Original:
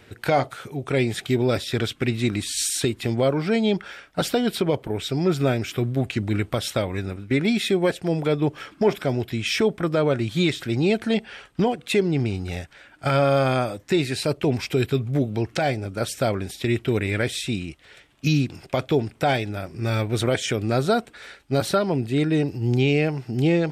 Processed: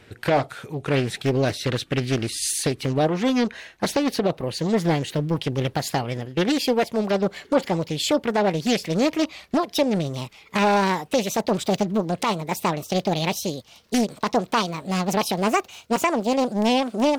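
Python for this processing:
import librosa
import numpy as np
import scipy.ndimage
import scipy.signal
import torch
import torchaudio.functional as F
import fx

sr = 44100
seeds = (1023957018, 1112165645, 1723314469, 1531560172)

y = fx.speed_glide(x, sr, from_pct=101, to_pct=175)
y = fx.doppler_dist(y, sr, depth_ms=0.55)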